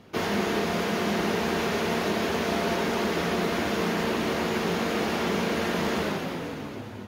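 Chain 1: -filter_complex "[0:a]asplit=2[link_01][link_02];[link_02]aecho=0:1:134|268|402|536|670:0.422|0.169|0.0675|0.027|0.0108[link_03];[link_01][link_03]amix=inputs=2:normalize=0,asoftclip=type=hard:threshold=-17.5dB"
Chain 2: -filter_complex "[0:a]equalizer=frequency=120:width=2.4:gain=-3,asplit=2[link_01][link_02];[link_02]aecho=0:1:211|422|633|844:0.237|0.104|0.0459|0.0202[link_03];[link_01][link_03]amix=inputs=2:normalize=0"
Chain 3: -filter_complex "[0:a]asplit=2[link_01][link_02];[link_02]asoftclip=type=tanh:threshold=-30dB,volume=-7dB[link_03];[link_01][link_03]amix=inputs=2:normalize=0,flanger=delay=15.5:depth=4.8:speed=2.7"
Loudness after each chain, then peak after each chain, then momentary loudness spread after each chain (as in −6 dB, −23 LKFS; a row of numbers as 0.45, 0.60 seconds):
−26.5, −27.0, −28.5 LKFS; −17.5, −14.0, −16.0 dBFS; 3, 3, 2 LU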